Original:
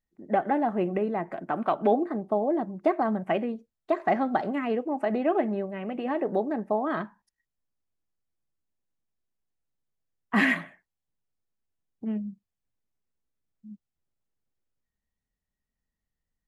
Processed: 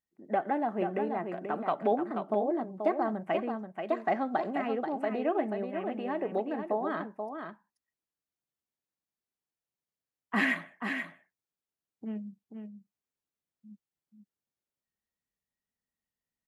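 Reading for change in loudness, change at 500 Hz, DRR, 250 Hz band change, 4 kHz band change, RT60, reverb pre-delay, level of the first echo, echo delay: -4.5 dB, -3.5 dB, none, -5.0 dB, -3.0 dB, none, none, -6.5 dB, 0.483 s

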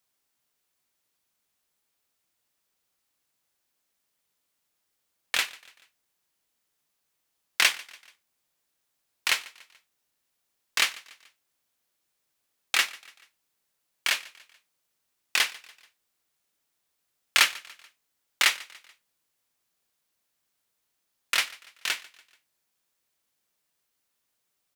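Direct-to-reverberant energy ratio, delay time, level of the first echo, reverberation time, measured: none, 0.144 s, -21.5 dB, none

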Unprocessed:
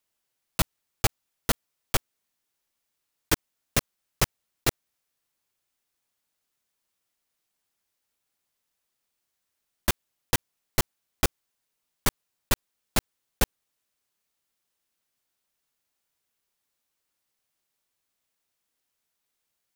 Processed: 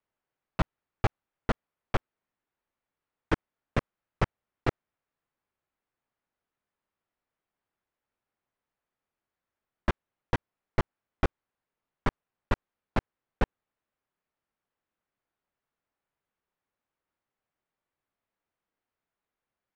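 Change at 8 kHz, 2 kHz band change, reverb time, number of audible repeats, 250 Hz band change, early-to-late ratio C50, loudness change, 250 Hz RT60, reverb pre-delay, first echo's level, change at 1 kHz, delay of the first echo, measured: -26.5 dB, -4.0 dB, none, none, 0.0 dB, none, -4.5 dB, none, none, none, -0.5 dB, none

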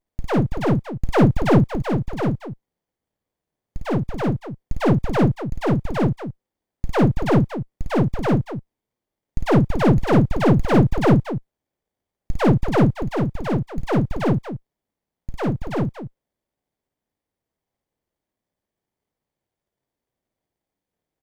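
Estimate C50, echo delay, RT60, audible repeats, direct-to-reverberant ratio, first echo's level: none, 53 ms, none, 2, none, -3.0 dB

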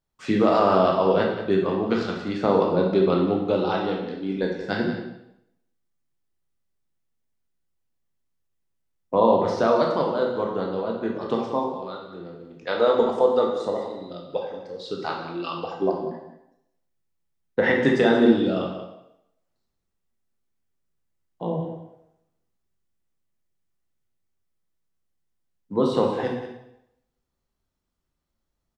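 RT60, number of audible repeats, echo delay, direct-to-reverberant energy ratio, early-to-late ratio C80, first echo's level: 0.85 s, 1, 0.183 s, -1.0 dB, 5.5 dB, -11.0 dB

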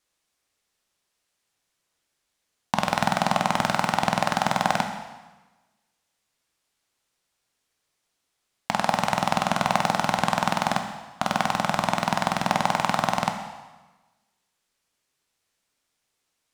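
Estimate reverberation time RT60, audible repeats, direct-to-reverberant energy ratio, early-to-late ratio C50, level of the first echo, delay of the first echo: 1.2 s, none, 5.0 dB, 7.0 dB, none, none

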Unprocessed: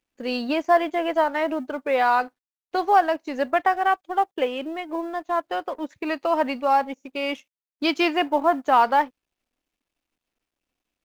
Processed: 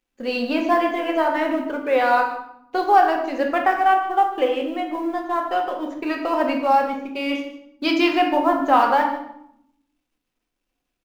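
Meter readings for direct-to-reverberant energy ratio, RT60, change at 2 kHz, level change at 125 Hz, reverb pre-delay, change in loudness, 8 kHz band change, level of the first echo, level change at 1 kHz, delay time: 1.0 dB, 0.75 s, +2.5 dB, n/a, 3 ms, +2.5 dB, n/a, -15.0 dB, +2.5 dB, 0.151 s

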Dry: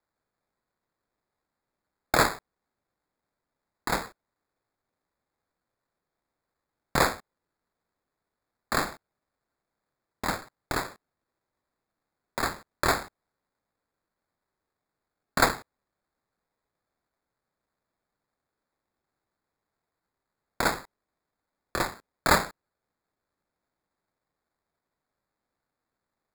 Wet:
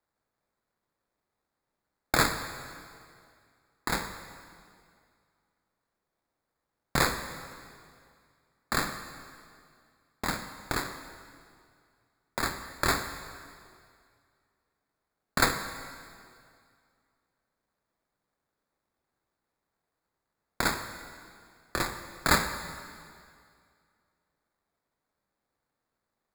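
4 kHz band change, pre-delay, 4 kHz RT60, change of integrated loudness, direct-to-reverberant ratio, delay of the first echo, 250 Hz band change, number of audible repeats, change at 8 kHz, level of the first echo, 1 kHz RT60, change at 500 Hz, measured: +0.5 dB, 5 ms, 2.1 s, -2.5 dB, 7.5 dB, none, -1.0 dB, none, +0.5 dB, none, 2.2 s, -4.5 dB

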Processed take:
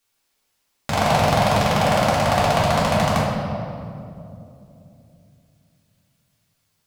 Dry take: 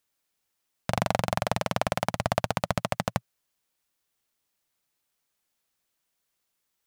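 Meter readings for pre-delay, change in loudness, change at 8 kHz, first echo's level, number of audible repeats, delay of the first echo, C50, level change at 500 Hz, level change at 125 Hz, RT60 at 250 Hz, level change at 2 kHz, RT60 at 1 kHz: 3 ms, +10.0 dB, +8.5 dB, none, none, none, -1.0 dB, +10.5 dB, +10.5 dB, 4.0 s, +9.5 dB, 2.3 s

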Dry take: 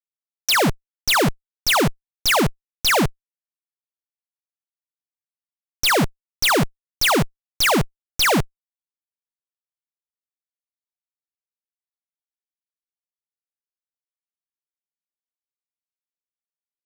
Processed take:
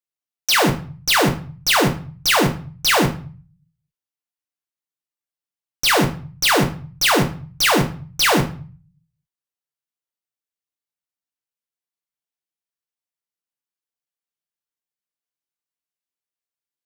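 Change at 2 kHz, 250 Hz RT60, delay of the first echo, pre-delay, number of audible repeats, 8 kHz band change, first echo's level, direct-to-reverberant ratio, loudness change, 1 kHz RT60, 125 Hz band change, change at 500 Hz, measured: +1.5 dB, 0.65 s, none, 4 ms, none, +1.5 dB, none, 3.0 dB, +1.5 dB, 0.45 s, +3.0 dB, +1.5 dB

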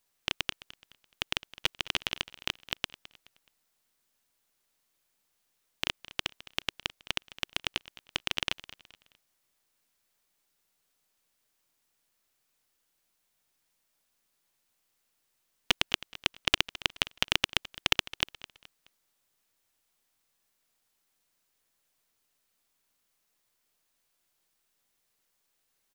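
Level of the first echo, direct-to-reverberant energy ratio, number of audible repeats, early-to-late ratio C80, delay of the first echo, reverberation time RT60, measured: -18.0 dB, none, 2, none, 0.212 s, none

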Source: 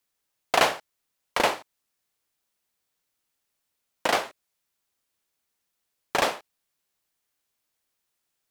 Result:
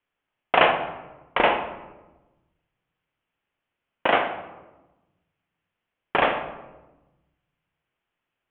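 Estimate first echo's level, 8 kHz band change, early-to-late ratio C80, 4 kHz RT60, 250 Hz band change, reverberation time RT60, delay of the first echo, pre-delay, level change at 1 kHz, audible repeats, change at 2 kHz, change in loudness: none, under -40 dB, 10.5 dB, 0.65 s, +4.5 dB, 1.1 s, none, 11 ms, +4.5 dB, none, +4.0 dB, +2.5 dB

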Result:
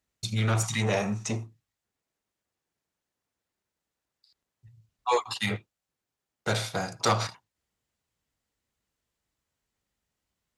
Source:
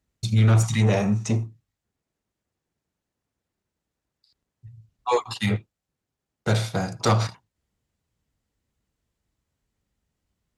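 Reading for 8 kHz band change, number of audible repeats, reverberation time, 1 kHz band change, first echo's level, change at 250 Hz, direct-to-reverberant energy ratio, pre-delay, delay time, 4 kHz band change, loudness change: 0.0 dB, none, none, -1.5 dB, none, -7.5 dB, none, none, none, 0.0 dB, -5.5 dB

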